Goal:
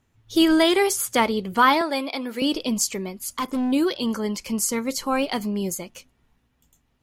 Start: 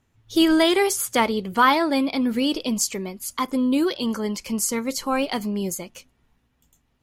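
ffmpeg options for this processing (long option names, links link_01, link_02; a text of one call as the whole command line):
ffmpeg -i in.wav -filter_complex "[0:a]asettb=1/sr,asplit=3[link_01][link_02][link_03];[link_01]atrim=end=1.814[link_04];[link_02]atrim=start=1.81:end=2.42,asetpts=PTS-STARTPTS,afade=type=in:duration=0.004:curve=qsin,afade=type=out:start_time=0.606:duration=0.004:curve=qsin,highpass=420[link_05];[link_03]atrim=start=2.416[link_06];[link_04][link_05]acrossfade=duration=0.004:curve1=hsin:curve2=qsin[link_07];[link_07][link_06]acrossfade=duration=0.004:curve1=qsin:curve2=hsin,asplit=3[link_08][link_09][link_10];[link_08]afade=type=out:start_time=3.18:duration=0.02[link_11];[link_09]asoftclip=type=hard:threshold=-21dB,afade=type=in:start_time=3.18:duration=0.02,afade=type=out:start_time=3.71:duration=0.02[link_12];[link_10]afade=type=in:start_time=3.71:duration=0.02[link_13];[link_11][link_12][link_13]amix=inputs=3:normalize=0" out.wav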